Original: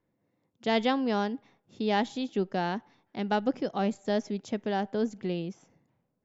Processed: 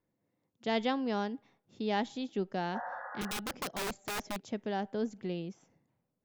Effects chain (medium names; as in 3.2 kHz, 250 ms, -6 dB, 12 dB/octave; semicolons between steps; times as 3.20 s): 3.21–4.42 s: integer overflow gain 25.5 dB; 2.77–3.35 s: spectral replace 480–2000 Hz both; trim -5 dB